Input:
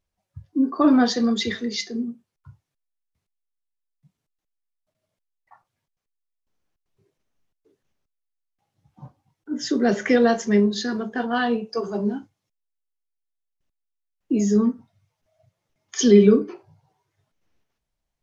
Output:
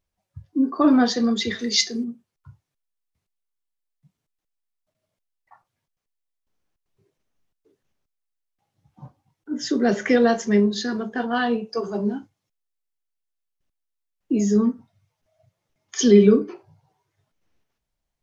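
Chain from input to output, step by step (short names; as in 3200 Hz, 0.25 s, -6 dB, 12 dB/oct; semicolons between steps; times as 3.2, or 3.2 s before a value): 1.59–2.04 high shelf 2400 Hz +12 dB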